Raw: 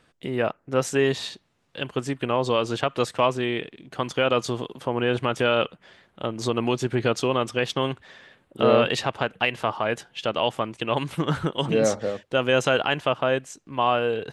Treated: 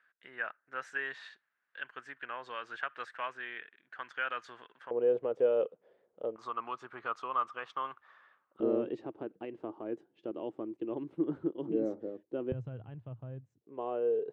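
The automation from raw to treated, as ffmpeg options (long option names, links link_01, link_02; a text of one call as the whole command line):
ffmpeg -i in.wav -af "asetnsamples=nb_out_samples=441:pad=0,asendcmd='4.91 bandpass f 480;6.36 bandpass f 1200;8.6 bandpass f 330;12.52 bandpass f 110;13.61 bandpass f 420',bandpass=frequency=1600:width_type=q:width=5.7:csg=0" out.wav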